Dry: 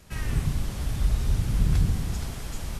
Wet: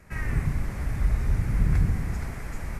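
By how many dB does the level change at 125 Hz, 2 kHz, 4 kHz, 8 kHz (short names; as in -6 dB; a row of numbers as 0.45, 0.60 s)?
0.0, +4.0, -10.5, -8.0 dB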